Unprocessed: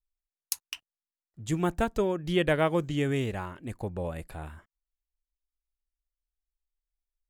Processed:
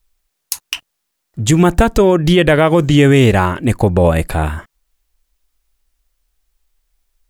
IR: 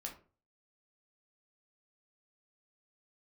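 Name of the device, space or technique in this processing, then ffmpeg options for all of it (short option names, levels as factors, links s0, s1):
loud club master: -af "acompressor=threshold=0.0398:ratio=2,asoftclip=type=hard:threshold=0.211,alimiter=level_in=15.8:limit=0.891:release=50:level=0:latency=1,volume=0.891"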